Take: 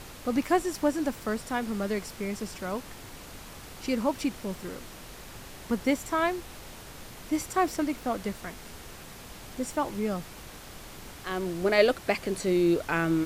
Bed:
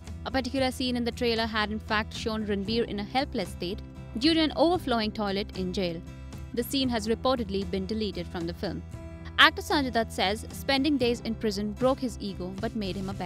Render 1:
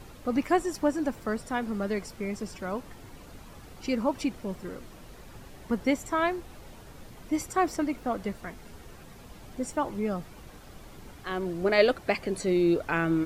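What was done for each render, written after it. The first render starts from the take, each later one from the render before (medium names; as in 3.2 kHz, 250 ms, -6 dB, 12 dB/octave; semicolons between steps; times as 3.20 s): noise reduction 9 dB, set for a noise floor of -45 dBFS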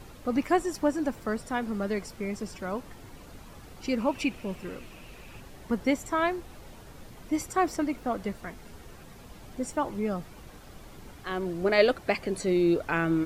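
3.98–5.41 s: peaking EQ 2.6 kHz +12.5 dB 0.36 oct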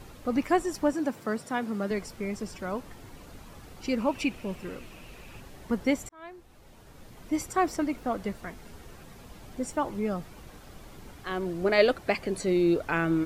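0.93–1.91 s: high-pass 110 Hz 24 dB/octave; 6.09–7.38 s: fade in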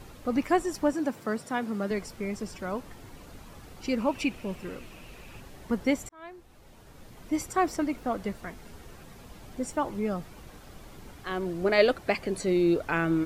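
no audible change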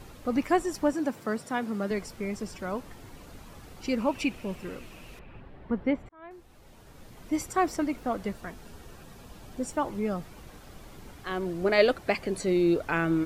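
5.19–6.31 s: distance through air 470 m; 8.31–9.72 s: band-stop 2.1 kHz, Q 11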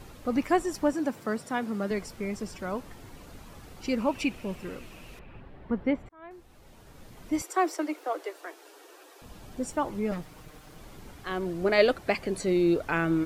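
7.42–9.22 s: steep high-pass 300 Hz 96 dB/octave; 10.11–10.78 s: comb filter that takes the minimum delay 6.5 ms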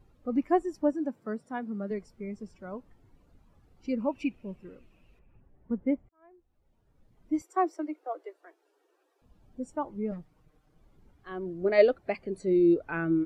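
spectral contrast expander 1.5:1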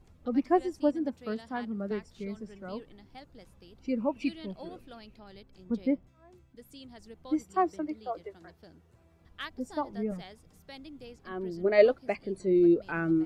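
add bed -22 dB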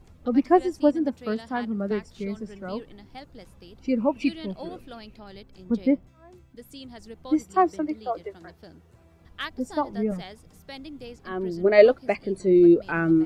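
trim +6.5 dB; peak limiter -3 dBFS, peak gain reduction 1 dB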